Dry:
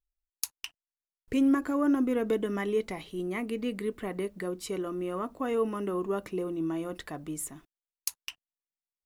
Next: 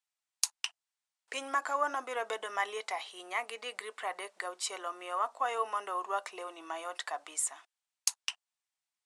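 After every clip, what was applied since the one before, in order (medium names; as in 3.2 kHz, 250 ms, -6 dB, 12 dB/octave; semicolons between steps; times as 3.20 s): elliptic band-pass 750–8900 Hz, stop band 70 dB; dynamic bell 2.4 kHz, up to -5 dB, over -53 dBFS, Q 1.2; trim +7.5 dB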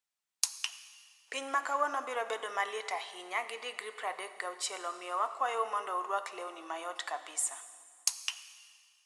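reverberation RT60 2.0 s, pre-delay 4 ms, DRR 10.5 dB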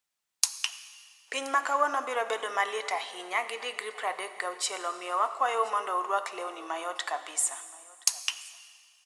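delay 1025 ms -23 dB; trim +5 dB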